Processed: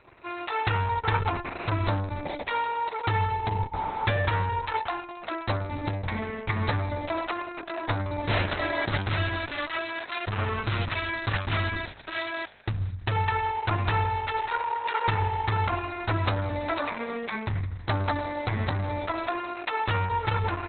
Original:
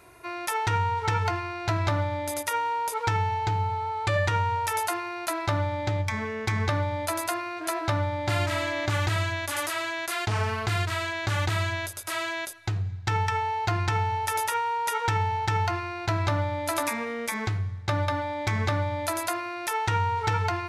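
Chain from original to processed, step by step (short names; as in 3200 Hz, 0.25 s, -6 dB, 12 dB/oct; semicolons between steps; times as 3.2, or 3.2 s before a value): on a send: frequency-shifting echo 0.16 s, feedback 43%, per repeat -48 Hz, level -18.5 dB; on the sum: Opus 6 kbps 48000 Hz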